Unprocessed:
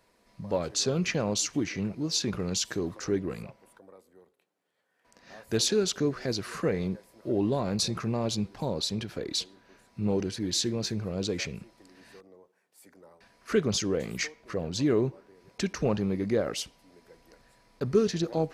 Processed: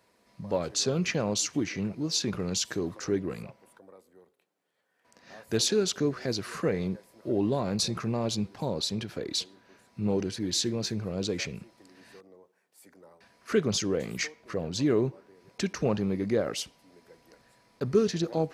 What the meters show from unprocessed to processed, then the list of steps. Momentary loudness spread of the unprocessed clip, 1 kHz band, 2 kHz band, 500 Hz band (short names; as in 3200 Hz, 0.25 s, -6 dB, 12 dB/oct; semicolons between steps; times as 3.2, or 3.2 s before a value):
9 LU, 0.0 dB, 0.0 dB, 0.0 dB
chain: HPF 71 Hz